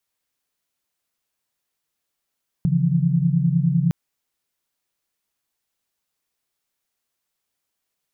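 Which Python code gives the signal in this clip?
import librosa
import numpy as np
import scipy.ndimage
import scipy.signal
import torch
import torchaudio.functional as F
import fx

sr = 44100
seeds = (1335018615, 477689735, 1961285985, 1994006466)

y = fx.chord(sr, length_s=1.26, notes=(49, 52, 53), wave='sine', level_db=-20.5)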